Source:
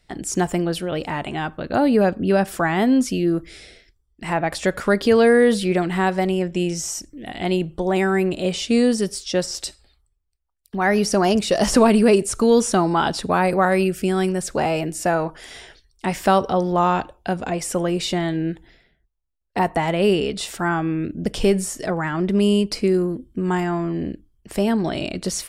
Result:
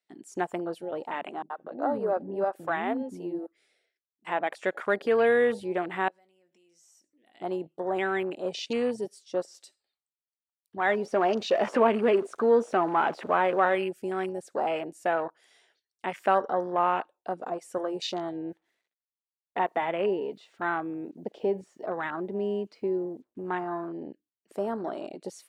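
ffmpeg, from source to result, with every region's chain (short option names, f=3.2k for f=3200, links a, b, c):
-filter_complex "[0:a]asettb=1/sr,asplit=3[a][b][c];[a]atrim=end=1.424[d];[b]atrim=start=1.42:end=4.25,asetpts=PTS-STARTPTS,afade=t=in:d=0.004:c=qsin,afade=t=out:st=2.826:d=0.004:c=qsin,equalizer=f=5.2k:w=0.42:g=-6.5,acrossover=split=320[e][f];[f]adelay=80[g];[e][g]amix=inputs=2:normalize=0,atrim=end_sample=124803[h];[c]atrim=start=4.246[i];[d][h]acrossfade=d=0.004:c1=hsin:c2=qsin[j];[j][i]acrossfade=d=0.004:c1=qsin:c2=hsin,asettb=1/sr,asplit=3[k][l][m];[k]atrim=end=6.084[n];[l]atrim=start=6.08:end=7.34,asetpts=PTS-STARTPTS,afade=t=in:d=0.004:c=qsin,afade=t=out:st=1.256:d=0.004:c=qsin,acompressor=threshold=-36dB:ratio=6:attack=3.2:release=140:knee=1:detection=peak,asplit=2[o][p];[p]adelay=20,volume=-12dB[q];[o][q]amix=inputs=2:normalize=0,atrim=end_sample=55566[r];[m]atrim=start=7.336[s];[n][r]acrossfade=d=0.004:c1=hsin:c2=qsin[t];[t][s]acrossfade=d=0.004:c1=qsin:c2=hsin,asettb=1/sr,asplit=3[u][v][w];[u]atrim=end=10.894[x];[v]atrim=start=10.89:end=13.75,asetpts=PTS-STARTPTS,afade=t=in:d=0.004:c=qsin,afade=t=out:st=2.856:d=0.004:c=qsin,aeval=exprs='val(0)+0.5*0.0531*sgn(val(0))':c=same,aemphasis=mode=reproduction:type=50fm,asplit=2[y][z];[z]adelay=13,volume=-13.5dB[aa];[y][aa]amix=inputs=2:normalize=0,atrim=end_sample=126126[ab];[w]atrim=start=13.746[ac];[x][ab]acrossfade=d=0.004:c1=hsin:c2=qsin[ad];[ad][ac]acrossfade=d=0.004:c1=qsin:c2=hsin,asettb=1/sr,asplit=3[ae][af][ag];[ae]atrim=end=18.504[ah];[af]atrim=start=18.5:end=23.88,asetpts=PTS-STARTPTS,afade=t=in:d=0.004:c=qsin,afade=t=out:st=5.376:d=0.004:c=qsin,lowpass=3.6k,acrusher=bits=8:mix=0:aa=0.5[ai];[ag]atrim=start=23.876[aj];[ah][ai]acrossfade=d=0.004:c1=hsin:c2=qsin[ak];[ak][aj]acrossfade=d=0.004:c1=qsin:c2=hsin,highpass=400,afwtdn=0.0355,bandreject=f=5.2k:w=21,volume=-5.5dB"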